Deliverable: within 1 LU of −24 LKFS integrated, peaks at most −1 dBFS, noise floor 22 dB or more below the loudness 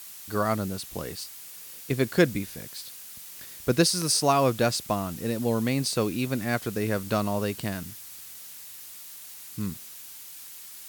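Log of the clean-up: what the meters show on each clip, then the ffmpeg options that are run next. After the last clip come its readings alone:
background noise floor −44 dBFS; target noise floor −49 dBFS; integrated loudness −27.0 LKFS; sample peak −7.0 dBFS; target loudness −24.0 LKFS
→ -af "afftdn=noise_reduction=6:noise_floor=-44"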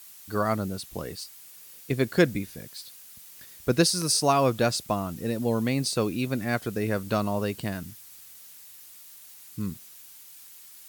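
background noise floor −49 dBFS; integrated loudness −27.0 LKFS; sample peak −7.0 dBFS; target loudness −24.0 LKFS
→ -af "volume=3dB"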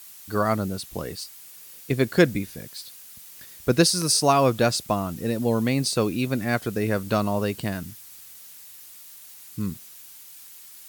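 integrated loudness −24.0 LKFS; sample peak −4.0 dBFS; background noise floor −46 dBFS

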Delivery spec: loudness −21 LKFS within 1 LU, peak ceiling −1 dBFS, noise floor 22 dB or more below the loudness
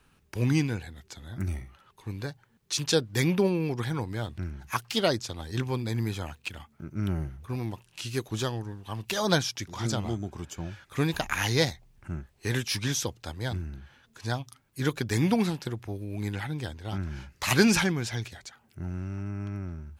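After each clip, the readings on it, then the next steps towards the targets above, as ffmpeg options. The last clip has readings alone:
integrated loudness −30.0 LKFS; sample peak −8.0 dBFS; target loudness −21.0 LKFS
→ -af "volume=9dB,alimiter=limit=-1dB:level=0:latency=1"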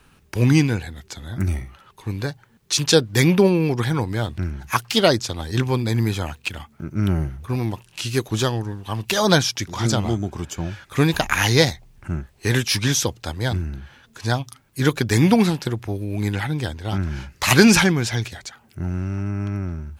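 integrated loudness −21.5 LKFS; sample peak −1.0 dBFS; background noise floor −56 dBFS

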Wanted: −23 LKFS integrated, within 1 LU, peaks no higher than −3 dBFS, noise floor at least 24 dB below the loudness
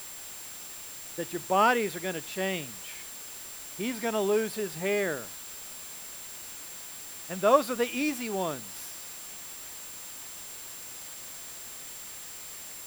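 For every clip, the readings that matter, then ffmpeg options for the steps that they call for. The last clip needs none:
interfering tone 7,400 Hz; level of the tone −45 dBFS; background noise floor −43 dBFS; target noise floor −56 dBFS; integrated loudness −32.0 LKFS; sample peak −7.5 dBFS; target loudness −23.0 LKFS
→ -af "bandreject=frequency=7400:width=30"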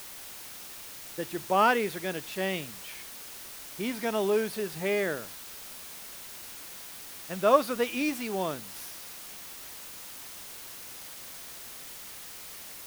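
interfering tone none found; background noise floor −44 dBFS; target noise floor −57 dBFS
→ -af "afftdn=noise_reduction=13:noise_floor=-44"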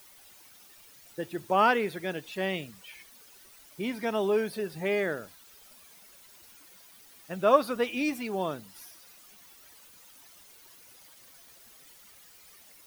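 background noise floor −55 dBFS; integrated loudness −29.0 LKFS; sample peak −8.0 dBFS; target loudness −23.0 LKFS
→ -af "volume=6dB,alimiter=limit=-3dB:level=0:latency=1"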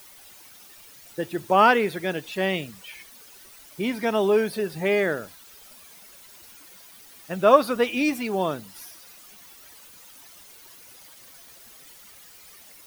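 integrated loudness −23.0 LKFS; sample peak −3.0 dBFS; background noise floor −49 dBFS

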